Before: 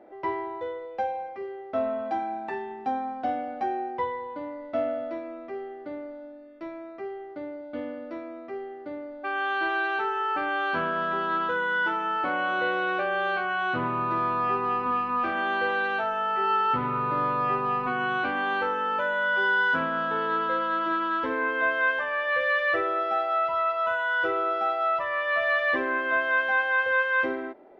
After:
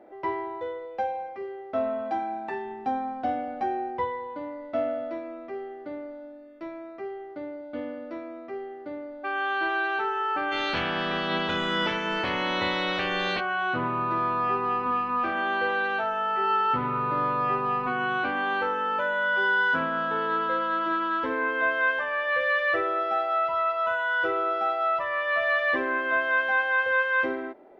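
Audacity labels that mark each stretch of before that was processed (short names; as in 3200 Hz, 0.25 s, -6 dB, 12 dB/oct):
2.650000	4.050000	low shelf 120 Hz +8 dB
10.510000	13.390000	spectral limiter ceiling under each frame's peak by 26 dB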